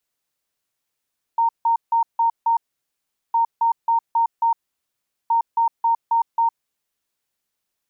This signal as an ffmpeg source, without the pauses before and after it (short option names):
-f lavfi -i "aevalsrc='0.188*sin(2*PI*922*t)*clip(min(mod(mod(t,1.96),0.27),0.11-mod(mod(t,1.96),0.27))/0.005,0,1)*lt(mod(t,1.96),1.35)':d=5.88:s=44100"